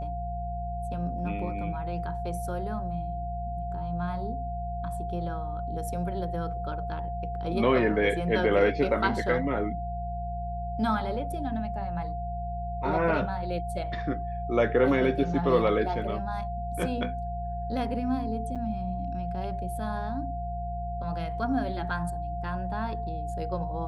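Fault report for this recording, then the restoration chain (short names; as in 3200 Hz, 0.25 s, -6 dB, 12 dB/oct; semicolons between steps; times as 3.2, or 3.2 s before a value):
hum 60 Hz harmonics 3 -35 dBFS
tone 700 Hz -34 dBFS
18.55–18.56 gap 7.1 ms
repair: de-hum 60 Hz, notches 3; notch 700 Hz, Q 30; interpolate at 18.55, 7.1 ms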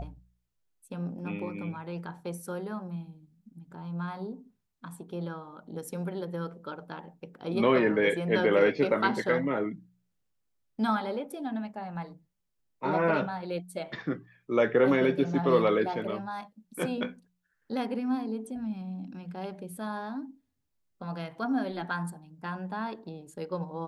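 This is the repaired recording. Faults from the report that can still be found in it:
none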